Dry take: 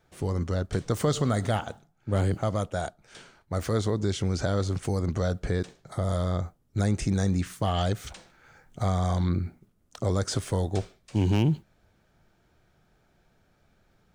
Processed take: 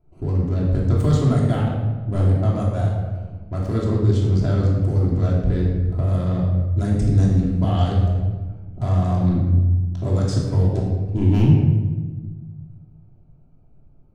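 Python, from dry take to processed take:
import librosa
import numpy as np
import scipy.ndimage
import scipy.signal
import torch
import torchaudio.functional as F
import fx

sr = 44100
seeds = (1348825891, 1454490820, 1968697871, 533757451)

y = fx.wiener(x, sr, points=25)
y = fx.low_shelf(y, sr, hz=250.0, db=10.5)
y = fx.room_shoebox(y, sr, seeds[0], volume_m3=1000.0, walls='mixed', distance_m=3.0)
y = y * 10.0 ** (-5.0 / 20.0)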